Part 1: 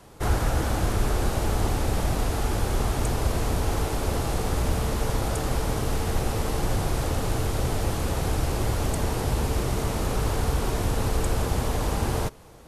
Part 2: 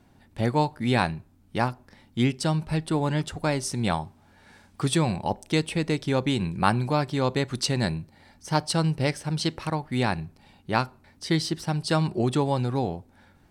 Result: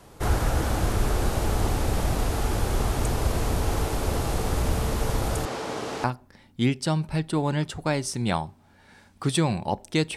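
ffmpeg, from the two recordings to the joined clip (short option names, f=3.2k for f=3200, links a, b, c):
-filter_complex "[0:a]asettb=1/sr,asplit=3[a][b][c];[a]atrim=end=5.454[d];[b]atrim=start=5.45:end=6.04,asetpts=PTS-STARTPTS,afade=t=in:d=0.004:c=qsin,afade=t=out:st=0.586:d=0.004:c=qsin,highpass=270,lowpass=6.2k[e];[c]atrim=start=6.036[f];[d][e]acrossfade=d=0.004:c1=hsin:c2=qsin[g];[g][f]acrossfade=d=0.004:c1=qsin:c2=hsin,apad=whole_dur=10.16,atrim=end=10.16,atrim=end=6.042[h];[1:a]atrim=start=1.618:end=5.74[i];[h][i]acrossfade=d=0.004:c1=hsin:c2=hsin"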